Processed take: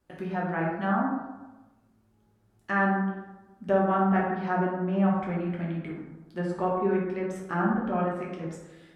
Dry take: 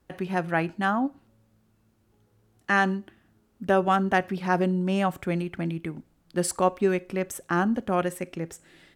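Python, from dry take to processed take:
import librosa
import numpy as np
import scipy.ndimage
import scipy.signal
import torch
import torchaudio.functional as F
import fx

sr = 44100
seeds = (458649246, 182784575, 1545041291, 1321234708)

y = fx.env_lowpass_down(x, sr, base_hz=1800.0, full_db=-22.0)
y = fx.rev_plate(y, sr, seeds[0], rt60_s=1.1, hf_ratio=0.45, predelay_ms=0, drr_db=-4.5)
y = y * librosa.db_to_amplitude(-8.0)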